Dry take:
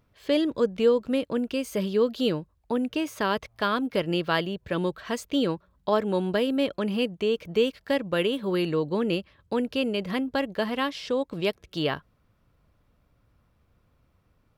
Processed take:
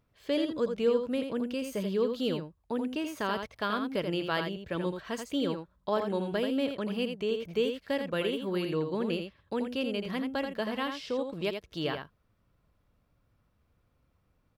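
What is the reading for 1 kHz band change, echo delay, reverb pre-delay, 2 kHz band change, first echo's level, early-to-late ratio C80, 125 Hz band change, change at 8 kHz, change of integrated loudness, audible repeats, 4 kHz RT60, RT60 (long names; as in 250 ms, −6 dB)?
−5.0 dB, 83 ms, no reverb audible, −5.0 dB, −6.5 dB, no reverb audible, −5.0 dB, −5.0 dB, −5.0 dB, 1, no reverb audible, no reverb audible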